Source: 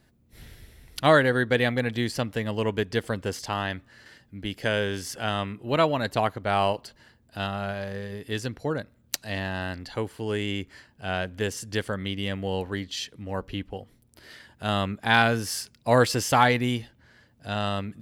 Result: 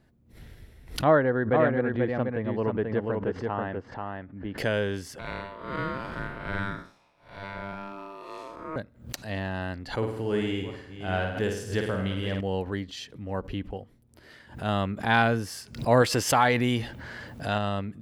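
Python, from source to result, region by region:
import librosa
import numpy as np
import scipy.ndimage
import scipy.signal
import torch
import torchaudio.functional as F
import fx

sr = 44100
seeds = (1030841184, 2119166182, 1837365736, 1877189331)

y = fx.chain(x, sr, fx.lowpass(hz=1500.0, slope=12),
    fx.low_shelf(hz=150.0, db=-5.5),
    fx.echo_single(ms=486, db=-4.0), at=(1.04, 4.58))
y = fx.chain(y, sr, fx.spec_blur(span_ms=190.0),
    fx.low_shelf(hz=120.0, db=-8.0),
    fx.ring_mod(carrier_hz=790.0), at=(5.19, 8.76))
y = fx.chain(y, sr, fx.reverse_delay(ms=420, wet_db=-12),
    fx.room_flutter(wall_m=9.0, rt60_s=0.68), at=(9.92, 12.41))
y = fx.chain(y, sr, fx.low_shelf(hz=470.0, db=-6.5),
    fx.env_flatten(amount_pct=50), at=(16.02, 17.58))
y = fx.high_shelf(y, sr, hz=2300.0, db=-9.5)
y = fx.pre_swell(y, sr, db_per_s=140.0)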